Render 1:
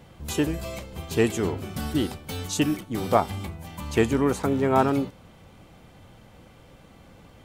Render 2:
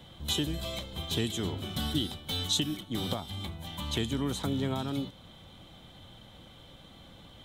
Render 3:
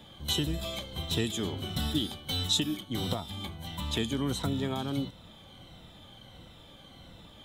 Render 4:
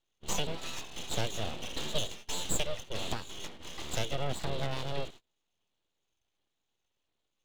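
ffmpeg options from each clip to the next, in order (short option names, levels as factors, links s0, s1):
-filter_complex "[0:a]superequalizer=7b=0.708:13b=3.98,alimiter=limit=0.237:level=0:latency=1:release=479,acrossover=split=240|3000[s0][s1][s2];[s1]acompressor=threshold=0.0251:ratio=6[s3];[s0][s3][s2]amix=inputs=3:normalize=0,volume=0.75"
-af "afftfilt=real='re*pow(10,7/40*sin(2*PI*(2*log(max(b,1)*sr/1024/100)/log(2)-(-1.5)*(pts-256)/sr)))':imag='im*pow(10,7/40*sin(2*PI*(2*log(max(b,1)*sr/1024/100)/log(2)-(-1.5)*(pts-256)/sr)))':win_size=1024:overlap=0.75"
-af "highpass=150,equalizer=f=190:t=q:w=4:g=-4,equalizer=f=790:t=q:w=4:g=-5,equalizer=f=1300:t=q:w=4:g=-9,lowpass=f=4100:w=0.5412,lowpass=f=4100:w=1.3066,agate=range=0.0355:threshold=0.00447:ratio=16:detection=peak,aeval=exprs='abs(val(0))':c=same,volume=1.26"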